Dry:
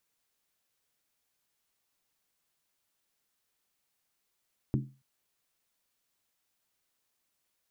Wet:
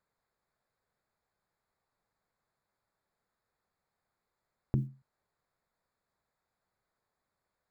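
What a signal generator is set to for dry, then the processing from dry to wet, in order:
struck skin length 0.28 s, lowest mode 134 Hz, decay 0.34 s, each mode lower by 3.5 dB, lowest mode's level −23.5 dB
adaptive Wiener filter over 15 samples
parametric band 290 Hz −7 dB 0.69 octaves
in parallel at −3 dB: compressor whose output falls as the input rises −34 dBFS

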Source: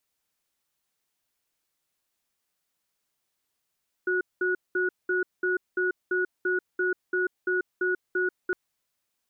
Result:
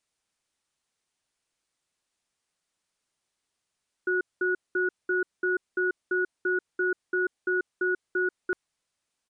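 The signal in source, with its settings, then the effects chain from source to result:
tone pair in a cadence 366 Hz, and 1,460 Hz, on 0.14 s, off 0.20 s, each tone −25.5 dBFS 4.46 s
downsampling to 22,050 Hz

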